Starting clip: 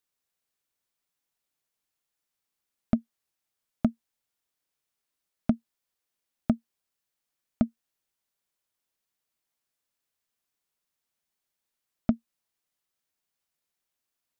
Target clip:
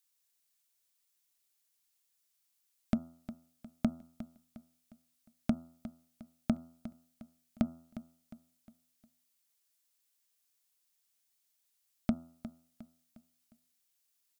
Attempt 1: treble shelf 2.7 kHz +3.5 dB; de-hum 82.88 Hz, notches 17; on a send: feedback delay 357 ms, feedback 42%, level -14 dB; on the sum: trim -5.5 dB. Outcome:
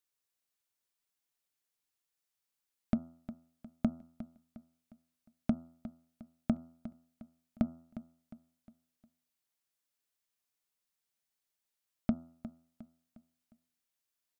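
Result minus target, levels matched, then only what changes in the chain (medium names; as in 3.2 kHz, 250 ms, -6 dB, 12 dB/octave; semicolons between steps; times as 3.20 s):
4 kHz band -6.5 dB
change: treble shelf 2.7 kHz +14 dB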